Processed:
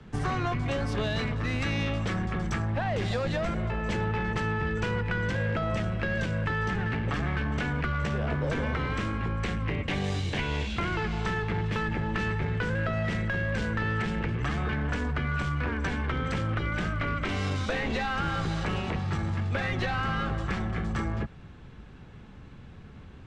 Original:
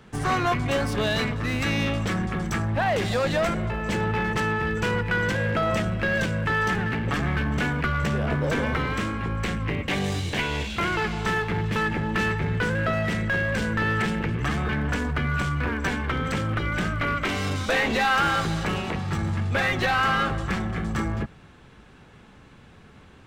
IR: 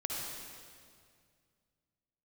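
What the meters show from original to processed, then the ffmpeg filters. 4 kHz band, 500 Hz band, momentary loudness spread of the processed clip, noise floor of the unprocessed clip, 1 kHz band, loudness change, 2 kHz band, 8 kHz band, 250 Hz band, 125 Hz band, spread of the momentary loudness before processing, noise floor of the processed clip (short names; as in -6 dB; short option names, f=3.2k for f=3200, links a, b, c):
-6.5 dB, -5.0 dB, 2 LU, -50 dBFS, -6.5 dB, -4.5 dB, -6.5 dB, -8.5 dB, -4.0 dB, -2.0 dB, 5 LU, -47 dBFS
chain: -filter_complex "[0:a]lowpass=6.7k,lowshelf=f=230:g=10.5,acrossover=split=150|360[a][b][c];[a]acompressor=threshold=-28dB:ratio=4[d];[b]acompressor=threshold=-34dB:ratio=4[e];[c]acompressor=threshold=-26dB:ratio=4[f];[d][e][f]amix=inputs=3:normalize=0,volume=-3.5dB"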